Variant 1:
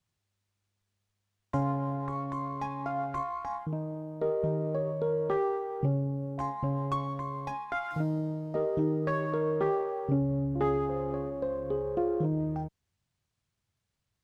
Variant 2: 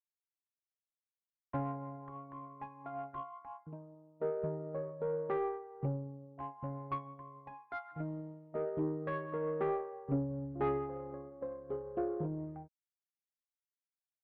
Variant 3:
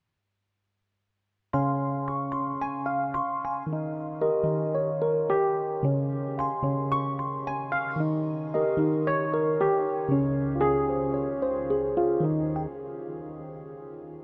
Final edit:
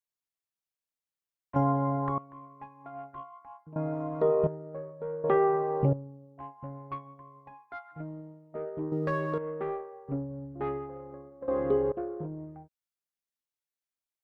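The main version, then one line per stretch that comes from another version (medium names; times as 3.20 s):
2
1.56–2.18 s: from 3
3.76–4.47 s: from 3
5.24–5.93 s: from 3
8.92–9.38 s: from 1
11.48–11.92 s: from 3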